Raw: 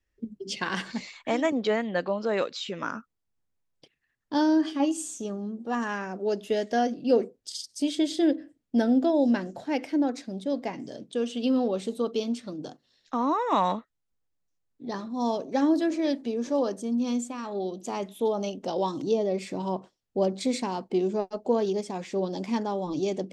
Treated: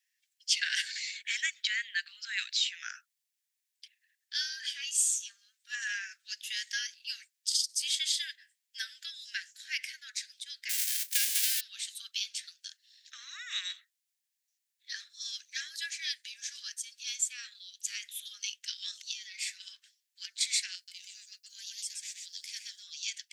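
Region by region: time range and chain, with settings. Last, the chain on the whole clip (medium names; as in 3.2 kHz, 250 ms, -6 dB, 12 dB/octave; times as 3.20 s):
10.69–11.59 s: formants flattened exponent 0.1 + compression 4:1, threshold -29 dBFS
20.75–22.83 s: differentiator + delay 126 ms -3.5 dB
whole clip: steep high-pass 1.6 kHz 72 dB/octave; treble shelf 2.9 kHz +10.5 dB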